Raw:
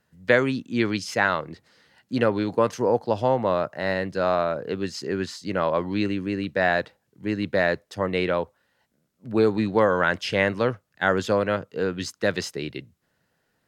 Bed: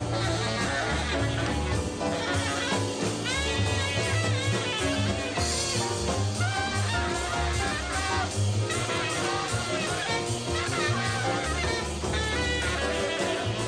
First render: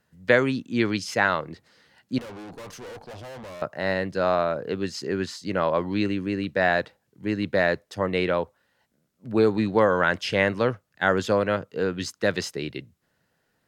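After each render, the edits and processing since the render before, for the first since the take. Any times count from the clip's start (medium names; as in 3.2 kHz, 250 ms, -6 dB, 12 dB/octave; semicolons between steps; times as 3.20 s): 2.18–3.62 s: valve stage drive 38 dB, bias 0.45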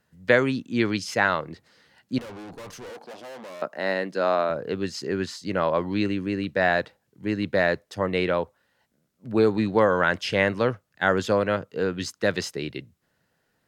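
2.90–4.50 s: high-pass 200 Hz 24 dB/octave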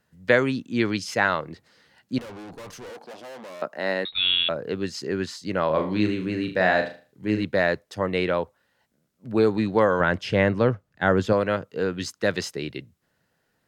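4.05–4.49 s: frequency inversion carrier 4 kHz; 5.66–7.44 s: flutter echo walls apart 6.5 m, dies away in 0.37 s; 10.00–11.33 s: tilt EQ -2 dB/octave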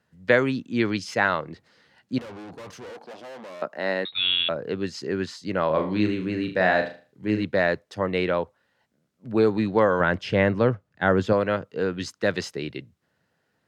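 high-pass 63 Hz; treble shelf 8.7 kHz -11 dB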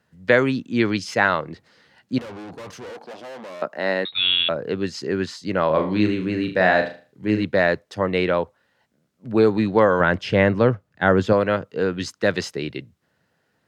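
trim +3.5 dB; peak limiter -3 dBFS, peak gain reduction 1.5 dB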